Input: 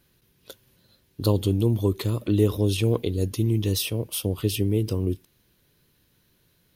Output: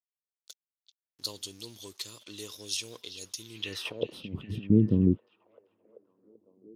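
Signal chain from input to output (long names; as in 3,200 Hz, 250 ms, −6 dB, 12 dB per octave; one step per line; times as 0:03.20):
low-shelf EQ 300 Hz +4.5 dB
0:03.85–0:04.70: compressor whose output falls as the input rises −28 dBFS, ratio −0.5
dead-zone distortion −45.5 dBFS
band-pass filter sweep 5,900 Hz → 210 Hz, 0:03.48–0:04.22
on a send: echo through a band-pass that steps 387 ms, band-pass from 3,400 Hz, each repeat −0.7 octaves, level −10 dB
on the sum: level +7 dB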